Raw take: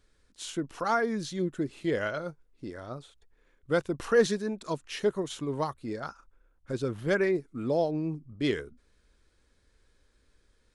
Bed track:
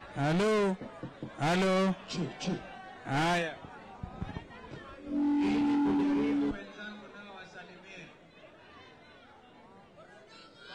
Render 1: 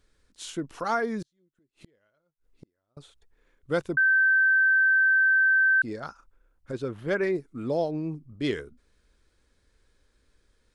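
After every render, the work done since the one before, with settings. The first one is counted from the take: 1.22–2.97 flipped gate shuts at -34 dBFS, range -39 dB; 3.97–5.82 bleep 1550 Hz -17.5 dBFS; 6.71–7.23 tone controls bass -3 dB, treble -7 dB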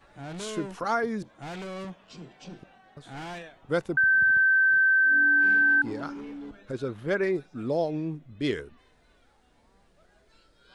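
add bed track -10 dB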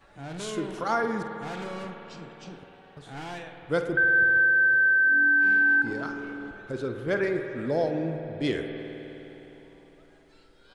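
doubler 49 ms -13.5 dB; spring tank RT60 3.7 s, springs 51 ms, chirp 60 ms, DRR 5 dB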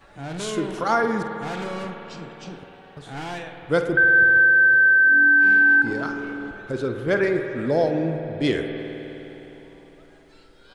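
gain +5.5 dB

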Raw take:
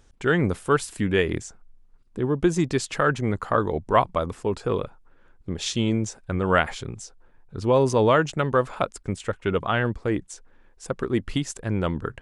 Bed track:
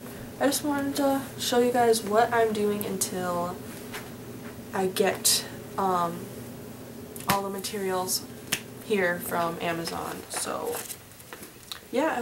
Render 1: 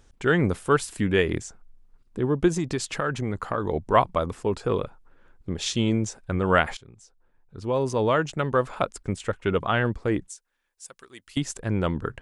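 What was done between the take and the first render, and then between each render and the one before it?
2.48–3.69 compressor 4:1, threshold -22 dBFS; 6.77–8.97 fade in, from -18 dB; 10.29–11.37 pre-emphasis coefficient 0.97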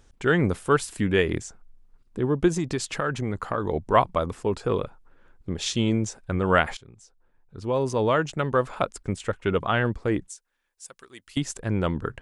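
nothing audible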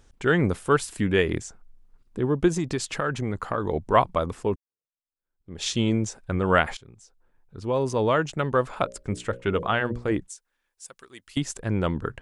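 4.56–5.63 fade in exponential; 8.83–10.12 notches 60/120/180/240/300/360/420/480/540/600 Hz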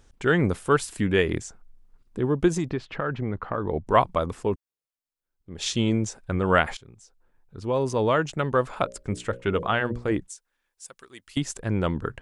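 2.7–3.87 air absorption 350 m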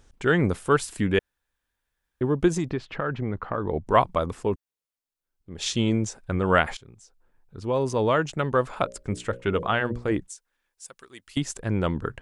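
1.19–2.21 room tone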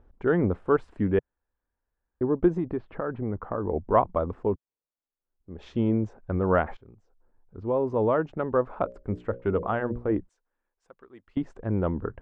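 LPF 1000 Hz 12 dB/oct; bell 140 Hz -10 dB 0.32 oct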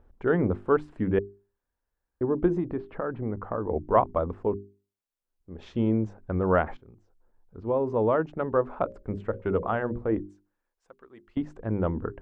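notches 50/100/150/200/250/300/350/400 Hz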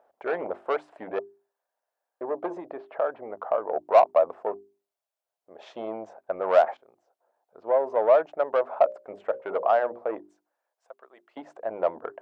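soft clip -19 dBFS, distortion -13 dB; resonant high-pass 650 Hz, resonance Q 4.9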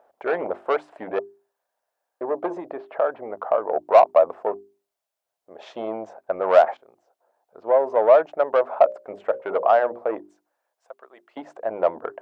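gain +4.5 dB; limiter -3 dBFS, peak gain reduction 1.5 dB

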